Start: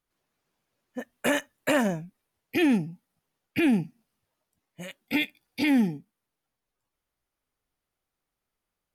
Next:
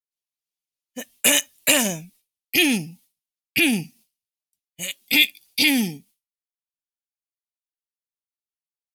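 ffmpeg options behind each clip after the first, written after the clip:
ffmpeg -i in.wav -af "aexciter=amount=6.8:drive=5.1:freq=2300,agate=range=-33dB:threshold=-48dB:ratio=3:detection=peak" out.wav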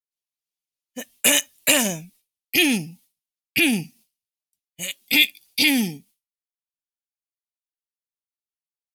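ffmpeg -i in.wav -af anull out.wav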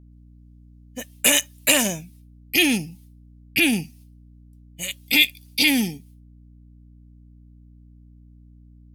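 ffmpeg -i in.wav -af "aeval=exprs='val(0)+0.00447*(sin(2*PI*60*n/s)+sin(2*PI*2*60*n/s)/2+sin(2*PI*3*60*n/s)/3+sin(2*PI*4*60*n/s)/4+sin(2*PI*5*60*n/s)/5)':channel_layout=same" out.wav

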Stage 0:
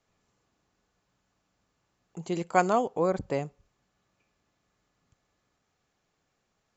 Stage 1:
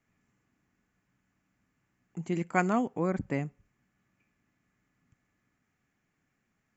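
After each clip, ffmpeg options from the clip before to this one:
ffmpeg -i in.wav -af "equalizer=frequency=125:width_type=o:width=1:gain=4,equalizer=frequency=250:width_type=o:width=1:gain=8,equalizer=frequency=500:width_type=o:width=1:gain=-6,equalizer=frequency=1000:width_type=o:width=1:gain=-3,equalizer=frequency=2000:width_type=o:width=1:gain=9,equalizer=frequency=4000:width_type=o:width=1:gain=-10,volume=-3dB" out.wav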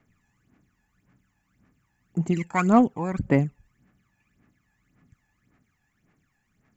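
ffmpeg -i in.wav -filter_complex "[0:a]aphaser=in_gain=1:out_gain=1:delay=1.2:decay=0.71:speed=1.8:type=sinusoidal,asplit=2[link_01][link_02];[link_02]asoftclip=type=tanh:threshold=-21.5dB,volume=-9dB[link_03];[link_01][link_03]amix=inputs=2:normalize=0" out.wav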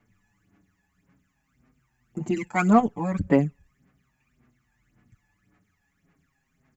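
ffmpeg -i in.wav -filter_complex "[0:a]asplit=2[link_01][link_02];[link_02]adelay=6.4,afreqshift=-0.39[link_03];[link_01][link_03]amix=inputs=2:normalize=1,volume=3dB" out.wav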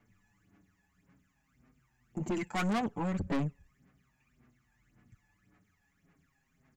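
ffmpeg -i in.wav -af "aeval=exprs='(tanh(22.4*val(0)+0.25)-tanh(0.25))/22.4':channel_layout=same,volume=-1.5dB" out.wav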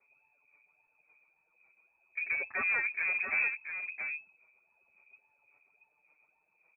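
ffmpeg -i in.wav -filter_complex "[0:a]acrossover=split=210|1200[link_01][link_02][link_03];[link_02]adynamicsmooth=sensitivity=8:basefreq=510[link_04];[link_01][link_04][link_03]amix=inputs=3:normalize=0,aecho=1:1:679:0.473,lowpass=frequency=2200:width_type=q:width=0.5098,lowpass=frequency=2200:width_type=q:width=0.6013,lowpass=frequency=2200:width_type=q:width=0.9,lowpass=frequency=2200:width_type=q:width=2.563,afreqshift=-2600" out.wav

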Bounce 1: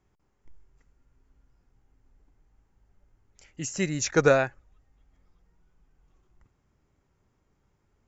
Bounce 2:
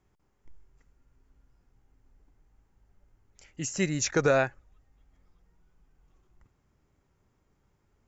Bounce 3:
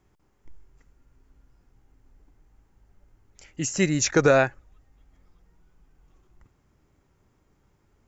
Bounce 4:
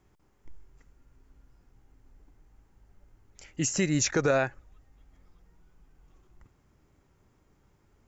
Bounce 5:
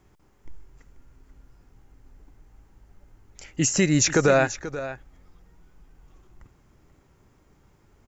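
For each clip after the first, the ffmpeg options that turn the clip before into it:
ffmpeg -i in.wav -af "alimiter=limit=-13.5dB:level=0:latency=1:release=59" out.wav
ffmpeg -i in.wav -af "equalizer=frequency=310:width=4.3:gain=2.5,volume=5dB" out.wav
ffmpeg -i in.wav -af "alimiter=limit=-15.5dB:level=0:latency=1:release=170" out.wav
ffmpeg -i in.wav -af "aecho=1:1:485:0.211,volume=6dB" out.wav

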